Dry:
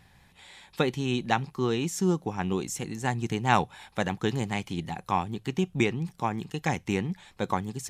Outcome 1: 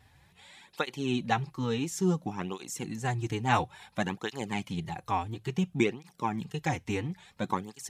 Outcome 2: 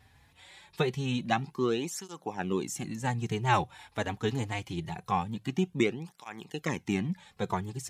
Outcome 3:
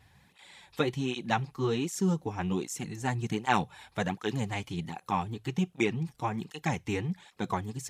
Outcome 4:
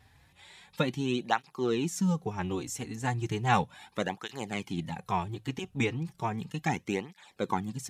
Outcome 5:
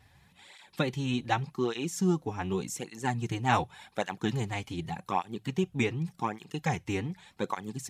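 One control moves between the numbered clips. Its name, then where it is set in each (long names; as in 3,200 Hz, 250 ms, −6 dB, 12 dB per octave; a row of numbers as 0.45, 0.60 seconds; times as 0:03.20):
through-zero flanger with one copy inverted, nulls at: 0.58, 0.24, 1.3, 0.35, 0.86 Hertz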